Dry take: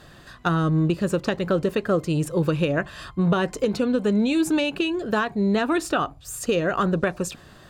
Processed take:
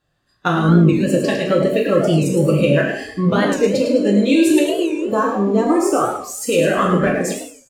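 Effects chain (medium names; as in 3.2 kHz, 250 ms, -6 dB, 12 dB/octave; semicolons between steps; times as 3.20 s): 4.59–6.18 s: high-order bell 2.7 kHz -11.5 dB; on a send: frequency-shifting echo 105 ms, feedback 49%, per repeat +51 Hz, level -6 dB; on the sum: spectral noise reduction 24 dB; in parallel at -3.5 dB: crossover distortion -40.5 dBFS; on the sum: gated-style reverb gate 190 ms falling, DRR -1 dB; warped record 45 rpm, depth 160 cents; trim -1 dB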